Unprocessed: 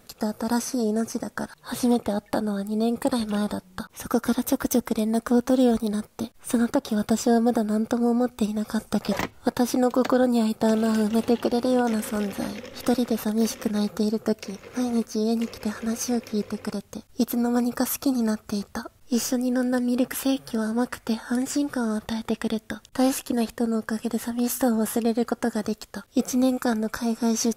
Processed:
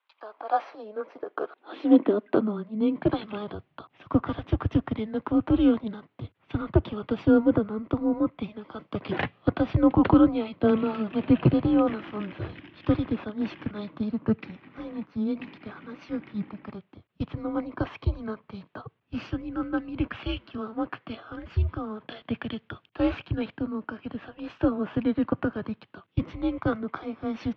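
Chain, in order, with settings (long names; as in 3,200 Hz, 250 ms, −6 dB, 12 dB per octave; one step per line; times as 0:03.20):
single-sideband voice off tune −210 Hz 290–3,300 Hz
high-pass filter sweep 920 Hz → 110 Hz, 0:00.10–0:03.50
multiband upward and downward expander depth 70%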